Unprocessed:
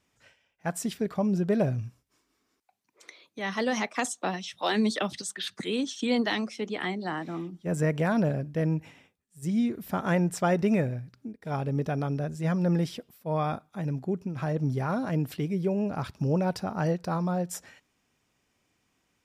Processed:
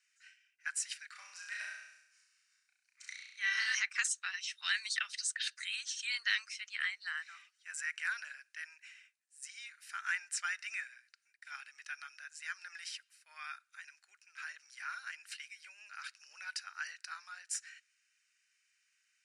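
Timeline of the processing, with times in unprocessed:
0:01.12–0:03.75: flutter between parallel walls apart 5.7 metres, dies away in 0.82 s
whole clip: Chebyshev band-pass filter 1,500–9,800 Hz, order 4; notch filter 3,400 Hz, Q 5.6; level +1 dB

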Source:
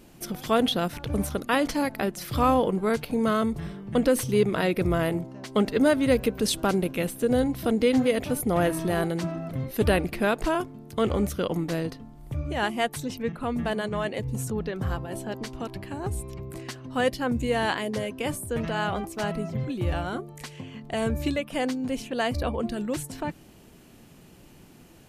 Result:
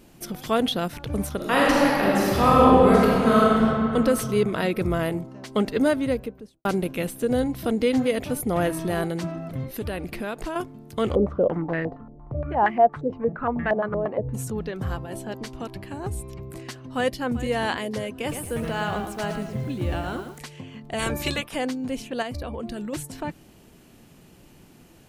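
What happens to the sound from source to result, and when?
0:01.36–0:03.60: thrown reverb, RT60 2.8 s, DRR −6.5 dB
0:05.81–0:06.65: fade out and dull
0:09.66–0:10.56: downward compressor 3 to 1, threshold −28 dBFS
0:11.15–0:14.34: low-pass on a step sequencer 8.6 Hz 500–1,900 Hz
0:16.86–0:17.39: delay throw 390 ms, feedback 35%, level −15 dB
0:18.10–0:20.39: feedback echo at a low word length 113 ms, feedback 35%, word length 8 bits, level −7 dB
0:20.98–0:21.54: ceiling on every frequency bin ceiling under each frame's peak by 19 dB
0:22.22–0:22.93: downward compressor, threshold −28 dBFS

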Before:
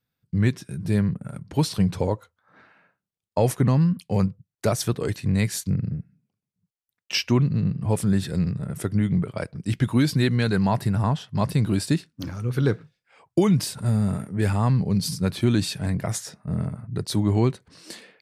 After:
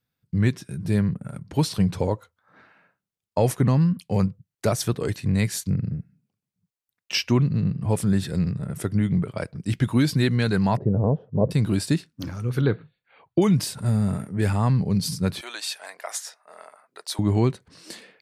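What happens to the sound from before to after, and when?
0:10.77–0:11.51: low-pass with resonance 490 Hz, resonance Q 5
0:12.61–0:13.42: linear-phase brick-wall low-pass 4,600 Hz
0:15.41–0:17.19: high-pass filter 650 Hz 24 dB per octave

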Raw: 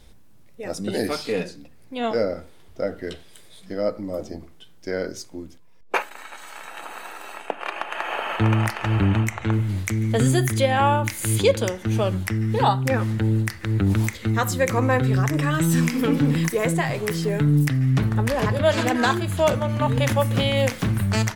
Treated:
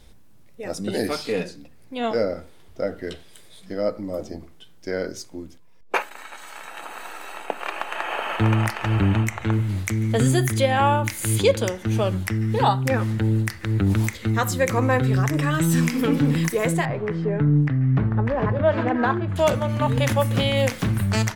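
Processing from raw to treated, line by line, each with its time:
0:06.40–0:07.46: delay throw 590 ms, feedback 65%, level −6 dB
0:16.85–0:19.36: low-pass filter 1,600 Hz

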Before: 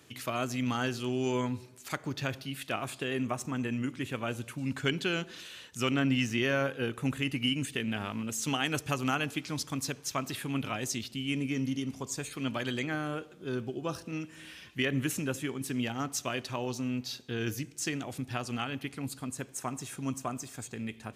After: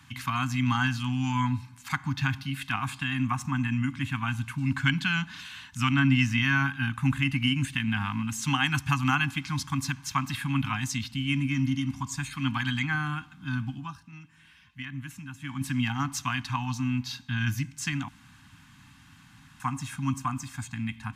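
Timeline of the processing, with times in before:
0:13.74–0:15.58: duck −13 dB, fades 0.19 s
0:18.08–0:19.60: fill with room tone
whole clip: Chebyshev band-stop filter 280–790 Hz, order 4; high-shelf EQ 3,600 Hz −10.5 dB; comb filter 1.9 ms, depth 38%; level +8.5 dB

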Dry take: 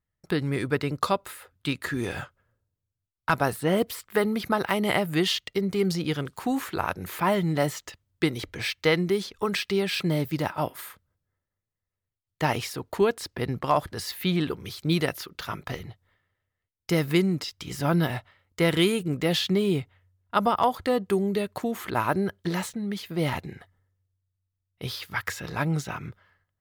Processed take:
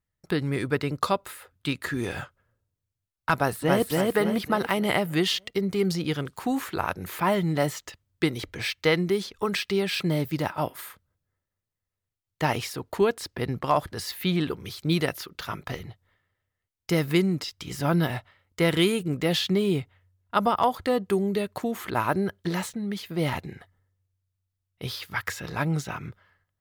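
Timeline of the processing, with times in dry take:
0:03.34–0:03.89: delay throw 280 ms, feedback 45%, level −1.5 dB

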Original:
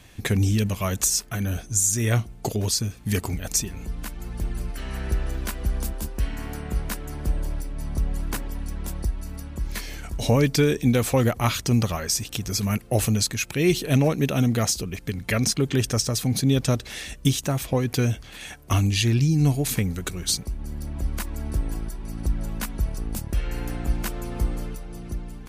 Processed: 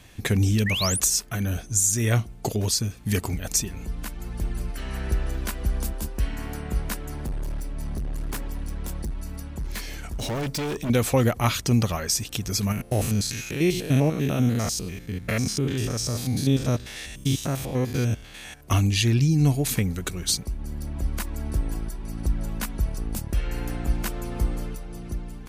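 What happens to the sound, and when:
0:00.66–0:01.00: sound drawn into the spectrogram rise 1,700–11,000 Hz −27 dBFS
0:07.12–0:10.90: gain into a clipping stage and back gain 26 dB
0:12.72–0:18.61: spectrum averaged block by block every 100 ms

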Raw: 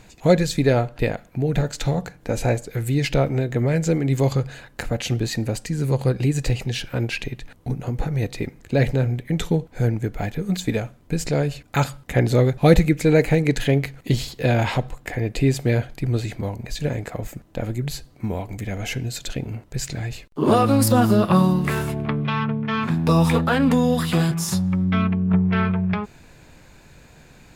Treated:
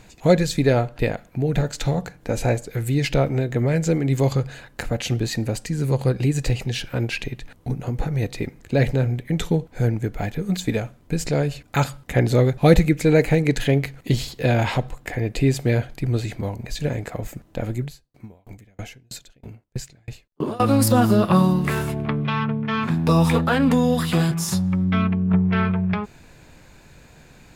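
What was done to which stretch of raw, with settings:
0:17.82–0:20.60: tremolo with a ramp in dB decaying 3.1 Hz, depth 38 dB

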